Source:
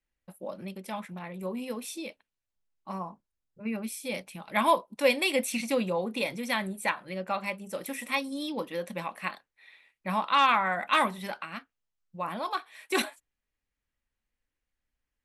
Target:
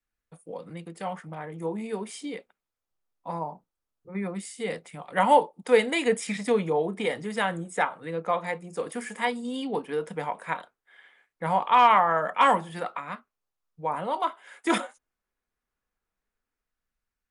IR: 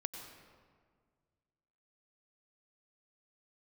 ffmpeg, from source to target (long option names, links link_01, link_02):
-filter_complex "[0:a]equalizer=frequency=1400:width=3.1:gain=4,acrossover=split=280|1400[link_01][link_02][link_03];[link_02]dynaudnorm=framelen=110:gausssize=13:maxgain=7dB[link_04];[link_01][link_04][link_03]amix=inputs=3:normalize=0,asetrate=38852,aresample=44100,volume=-2dB"